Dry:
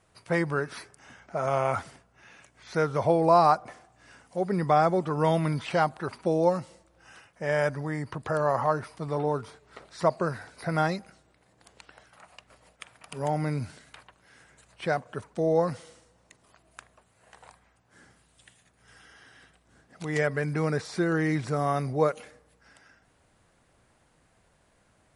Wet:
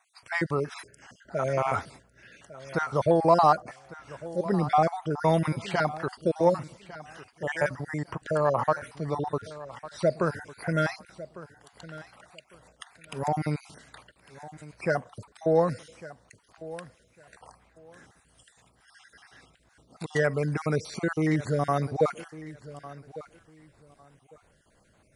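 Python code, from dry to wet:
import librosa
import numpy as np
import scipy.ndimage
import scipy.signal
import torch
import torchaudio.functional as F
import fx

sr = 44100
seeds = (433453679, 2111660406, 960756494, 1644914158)

p1 = fx.spec_dropout(x, sr, seeds[0], share_pct=36)
p2 = 10.0 ** (-18.0 / 20.0) * np.tanh(p1 / 10.0 ** (-18.0 / 20.0))
p3 = p1 + (p2 * librosa.db_to_amplitude(-11.0))
y = fx.echo_feedback(p3, sr, ms=1152, feedback_pct=21, wet_db=-17)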